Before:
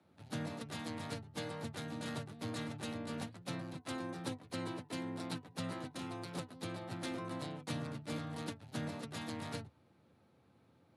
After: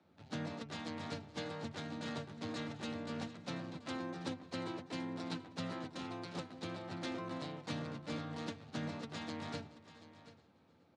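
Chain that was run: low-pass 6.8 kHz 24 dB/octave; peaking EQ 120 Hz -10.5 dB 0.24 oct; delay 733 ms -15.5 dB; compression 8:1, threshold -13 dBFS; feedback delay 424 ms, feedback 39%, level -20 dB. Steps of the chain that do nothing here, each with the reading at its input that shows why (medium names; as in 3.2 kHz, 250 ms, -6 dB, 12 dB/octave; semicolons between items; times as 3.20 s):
compression, threshold -13 dBFS: peak at its input -27.0 dBFS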